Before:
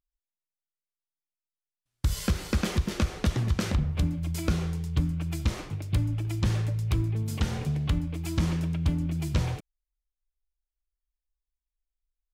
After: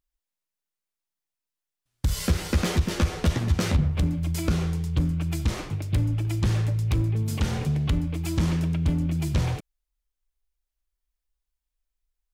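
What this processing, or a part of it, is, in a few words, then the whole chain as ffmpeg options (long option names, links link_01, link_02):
saturation between pre-emphasis and de-emphasis: -filter_complex "[0:a]highshelf=frequency=3100:gain=9.5,asoftclip=type=tanh:threshold=-20dB,highshelf=frequency=3100:gain=-9.5,asettb=1/sr,asplit=3[link_01][link_02][link_03];[link_01]atrim=end=2.194[link_04];[link_02]atrim=start=2.19:end=3.88,asetpts=PTS-STARTPTS,afade=type=in:duration=0.004:curve=qsin,afade=type=out:start_time=1.686:duration=0.004:curve=qsin,asplit=2[link_05][link_06];[link_06]adelay=12,volume=-5dB[link_07];[link_05][link_07]amix=inputs=2:normalize=0,atrim=end_sample=74529[link_08];[link_03]atrim=start=3.876[link_09];[link_04][link_08]acrossfade=duration=0.004:curve1=hsin:curve2=qsin[link_10];[link_10][link_09]acrossfade=duration=0.004:curve1=qsin:curve2=hsin,volume=4.5dB"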